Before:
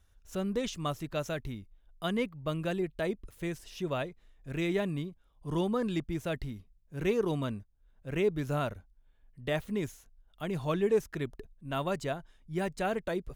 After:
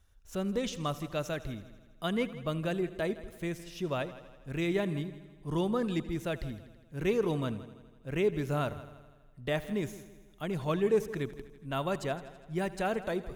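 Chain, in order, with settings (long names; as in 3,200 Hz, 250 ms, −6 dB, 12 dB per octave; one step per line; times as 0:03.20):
echo machine with several playback heads 82 ms, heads first and second, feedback 52%, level −18.5 dB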